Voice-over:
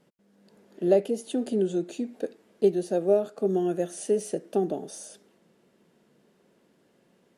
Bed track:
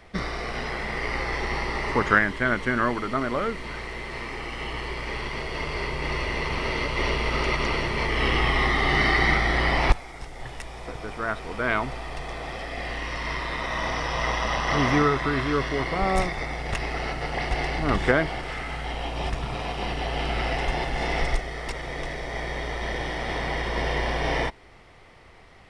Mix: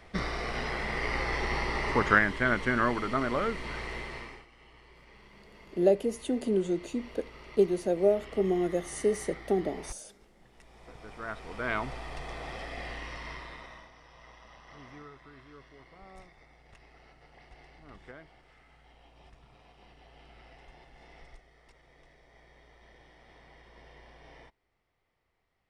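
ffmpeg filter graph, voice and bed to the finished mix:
-filter_complex "[0:a]adelay=4950,volume=-2dB[a];[1:a]volume=15.5dB,afade=t=out:st=3.95:d=0.51:silence=0.0841395,afade=t=in:st=10.5:d=1.37:silence=0.11885,afade=t=out:st=12.64:d=1.25:silence=0.0794328[b];[a][b]amix=inputs=2:normalize=0"

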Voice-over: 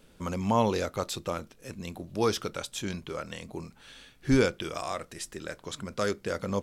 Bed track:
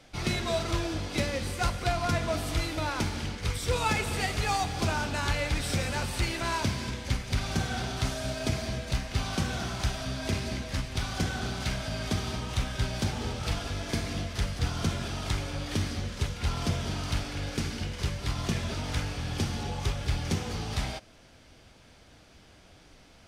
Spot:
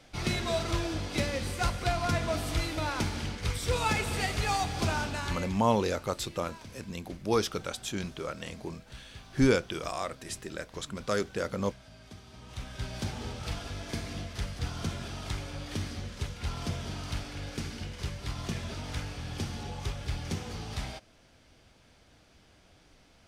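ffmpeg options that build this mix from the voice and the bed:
-filter_complex "[0:a]adelay=5100,volume=-0.5dB[a];[1:a]volume=13dB,afade=t=out:st=4.99:d=0.61:silence=0.125893,afade=t=in:st=12.3:d=0.74:silence=0.199526[b];[a][b]amix=inputs=2:normalize=0"

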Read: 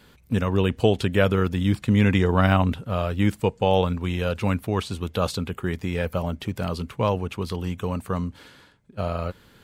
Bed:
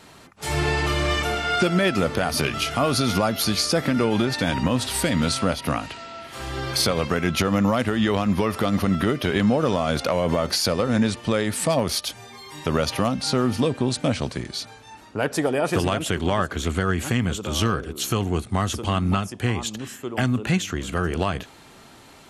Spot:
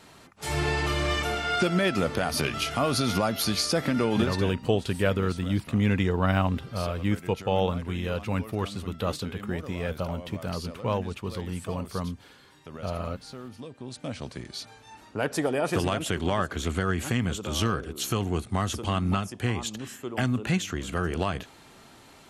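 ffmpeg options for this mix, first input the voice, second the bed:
-filter_complex "[0:a]adelay=3850,volume=-5dB[a];[1:a]volume=12dB,afade=t=out:st=4.21:d=0.35:silence=0.158489,afade=t=in:st=13.75:d=1.26:silence=0.158489[b];[a][b]amix=inputs=2:normalize=0"

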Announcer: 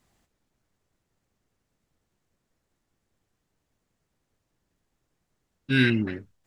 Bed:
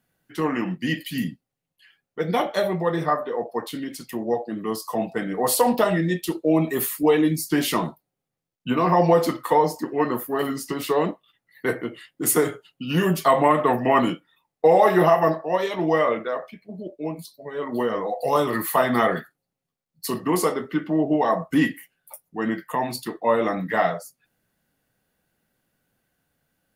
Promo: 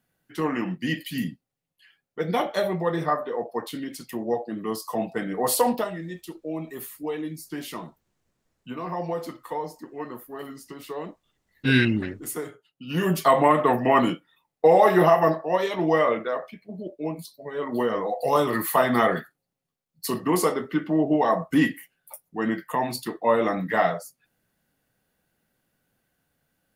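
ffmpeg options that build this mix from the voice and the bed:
-filter_complex "[0:a]adelay=5950,volume=1.5dB[a];[1:a]volume=10dB,afade=t=out:st=5.65:d=0.26:silence=0.298538,afade=t=in:st=12.75:d=0.43:silence=0.251189[b];[a][b]amix=inputs=2:normalize=0"

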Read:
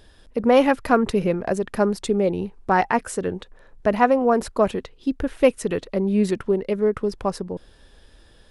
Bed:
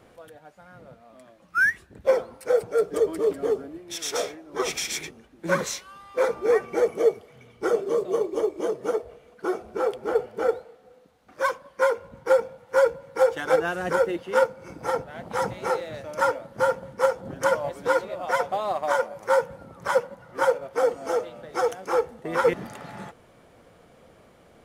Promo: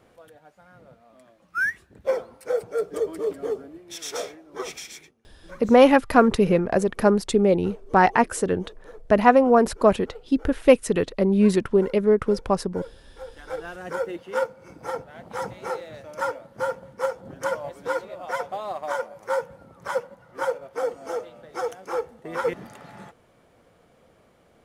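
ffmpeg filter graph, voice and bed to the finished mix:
-filter_complex "[0:a]adelay=5250,volume=2dB[a];[1:a]volume=12.5dB,afade=t=out:st=4.41:d=0.75:silence=0.141254,afade=t=in:st=13.26:d=0.91:silence=0.158489[b];[a][b]amix=inputs=2:normalize=0"

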